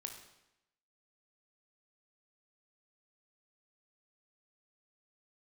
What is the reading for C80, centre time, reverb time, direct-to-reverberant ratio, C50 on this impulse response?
9.0 dB, 24 ms, 0.85 s, 4.0 dB, 6.5 dB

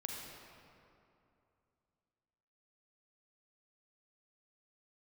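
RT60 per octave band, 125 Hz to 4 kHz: 3.1 s, 2.9 s, 2.7 s, 2.6 s, 2.1 s, 1.6 s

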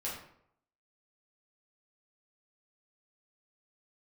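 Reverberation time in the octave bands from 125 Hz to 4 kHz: 0.75 s, 0.65 s, 0.70 s, 0.65 s, 0.55 s, 0.45 s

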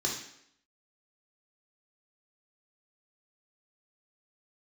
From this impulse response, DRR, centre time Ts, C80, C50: -2.5 dB, 34 ms, 8.5 dB, 5.0 dB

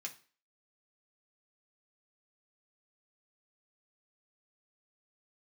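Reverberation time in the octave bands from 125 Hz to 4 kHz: 0.35 s, 0.40 s, 0.40 s, 0.40 s, 0.40 s, 0.40 s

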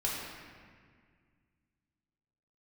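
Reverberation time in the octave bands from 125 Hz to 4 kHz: 2.8 s, 2.6 s, 2.0 s, 1.8 s, 1.9 s, 1.3 s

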